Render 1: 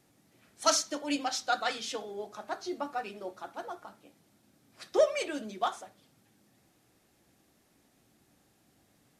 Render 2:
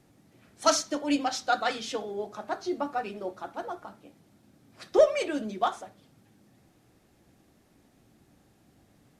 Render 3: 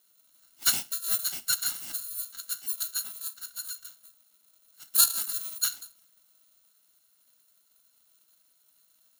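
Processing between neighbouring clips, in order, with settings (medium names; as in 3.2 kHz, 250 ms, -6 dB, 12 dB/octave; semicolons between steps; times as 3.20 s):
tilt EQ -1.5 dB/octave; trim +3.5 dB
bit-reversed sample order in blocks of 128 samples; elliptic high-pass 1.5 kHz, stop band 40 dB; ring modulator 1.3 kHz; trim +2 dB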